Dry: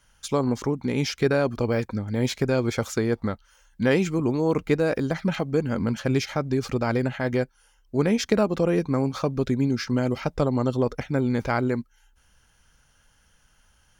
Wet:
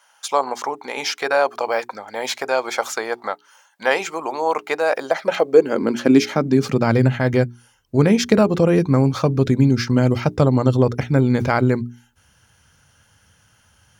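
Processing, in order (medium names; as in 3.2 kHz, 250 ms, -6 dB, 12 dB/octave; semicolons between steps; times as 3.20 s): high-pass sweep 770 Hz -> 97 Hz, 4.90–7.24 s; hum notches 60/120/180/240/300/360/420 Hz; trim +6 dB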